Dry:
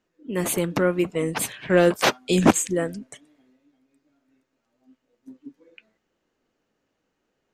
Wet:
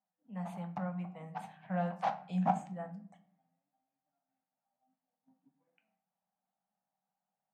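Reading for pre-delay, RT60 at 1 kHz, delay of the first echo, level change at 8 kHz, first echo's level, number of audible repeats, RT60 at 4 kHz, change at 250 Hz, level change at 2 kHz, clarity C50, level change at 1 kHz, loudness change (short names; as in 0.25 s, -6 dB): 5 ms, 0.45 s, none, under -35 dB, none, none, 0.35 s, -15.5 dB, -22.0 dB, 13.5 dB, -7.5 dB, -15.5 dB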